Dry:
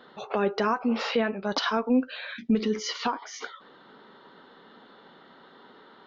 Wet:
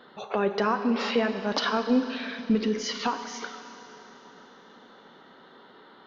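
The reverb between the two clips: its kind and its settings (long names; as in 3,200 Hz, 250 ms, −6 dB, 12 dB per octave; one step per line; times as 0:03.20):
four-comb reverb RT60 3.5 s, combs from 30 ms, DRR 8.5 dB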